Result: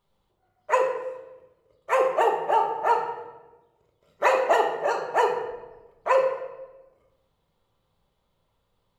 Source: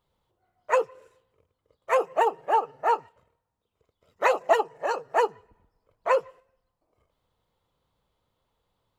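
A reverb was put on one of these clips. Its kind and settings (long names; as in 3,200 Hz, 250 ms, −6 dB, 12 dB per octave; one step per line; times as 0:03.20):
rectangular room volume 590 cubic metres, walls mixed, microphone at 1.2 metres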